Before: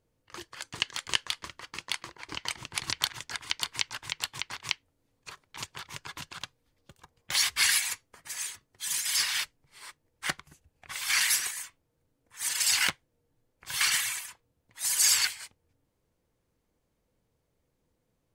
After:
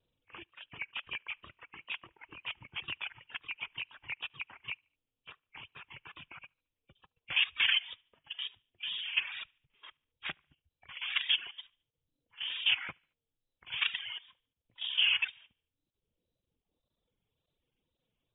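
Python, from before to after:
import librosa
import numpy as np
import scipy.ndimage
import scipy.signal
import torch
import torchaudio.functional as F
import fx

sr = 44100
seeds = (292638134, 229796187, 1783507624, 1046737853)

y = fx.freq_compress(x, sr, knee_hz=2200.0, ratio=4.0)
y = fx.level_steps(y, sr, step_db=11)
y = fx.wow_flutter(y, sr, seeds[0], rate_hz=2.1, depth_cents=79.0)
y = fx.echo_feedback(y, sr, ms=73, feedback_pct=47, wet_db=-21.5)
y = fx.dereverb_blind(y, sr, rt60_s=1.8)
y = F.gain(torch.from_numpy(y), -3.5).numpy()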